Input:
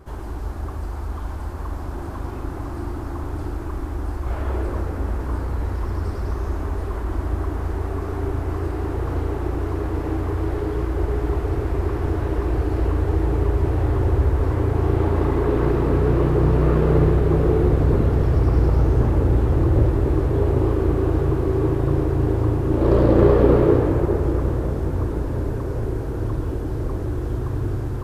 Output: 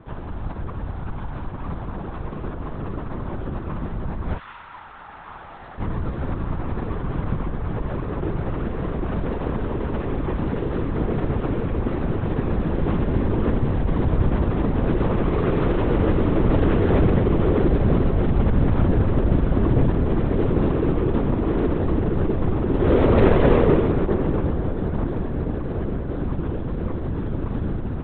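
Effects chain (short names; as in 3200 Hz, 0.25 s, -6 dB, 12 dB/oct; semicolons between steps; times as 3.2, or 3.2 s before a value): tracing distortion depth 0.37 ms; 4.37–5.78 HPF 1100 Hz -> 500 Hz 24 dB/oct; LPC vocoder at 8 kHz whisper; gain -1 dB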